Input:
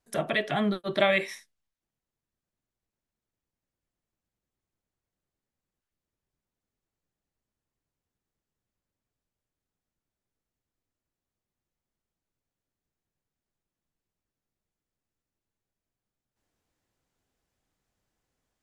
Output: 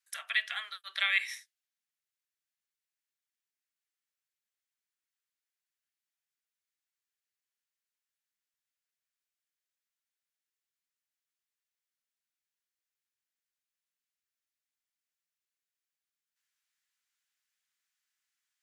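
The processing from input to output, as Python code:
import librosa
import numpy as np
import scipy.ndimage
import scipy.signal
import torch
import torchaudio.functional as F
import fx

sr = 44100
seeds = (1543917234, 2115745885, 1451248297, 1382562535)

y = scipy.signal.sosfilt(scipy.signal.butter(4, 1500.0, 'highpass', fs=sr, output='sos'), x)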